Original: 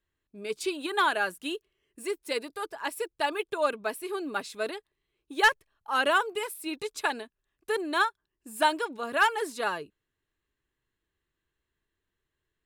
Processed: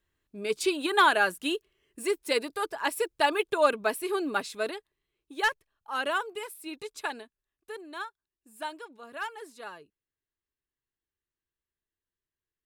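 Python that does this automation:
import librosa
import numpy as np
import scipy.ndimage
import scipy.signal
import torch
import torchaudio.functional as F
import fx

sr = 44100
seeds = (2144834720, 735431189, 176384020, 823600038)

y = fx.gain(x, sr, db=fx.line((4.21, 4.0), (5.38, -5.0), (7.19, -5.0), (7.8, -12.5)))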